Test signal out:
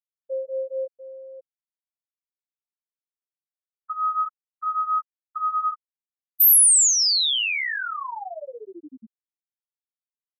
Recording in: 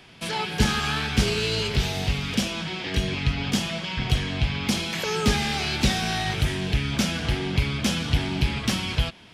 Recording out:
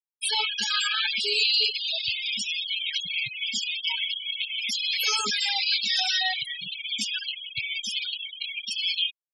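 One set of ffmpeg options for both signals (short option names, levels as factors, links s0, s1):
-af "highpass=f=360:p=1,aecho=1:1:235:0.106,crystalizer=i=9:c=0,alimiter=limit=0.473:level=0:latency=1:release=188,flanger=delay=19.5:depth=7.2:speed=0.39,adynamicequalizer=threshold=0.00794:dfrequency=6000:dqfactor=6.9:tfrequency=6000:tqfactor=6.9:attack=5:release=100:ratio=0.375:range=2.5:mode=cutabove:tftype=bell,afftfilt=real='re*gte(hypot(re,im),0.158)':imag='im*gte(hypot(re,im),0.158)':win_size=1024:overlap=0.75"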